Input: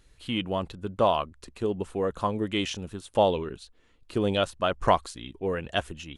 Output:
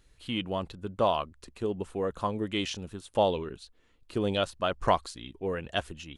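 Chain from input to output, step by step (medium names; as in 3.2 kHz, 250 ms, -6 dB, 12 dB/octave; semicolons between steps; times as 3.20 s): dynamic bell 4.5 kHz, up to +4 dB, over -49 dBFS, Q 2.5; trim -3 dB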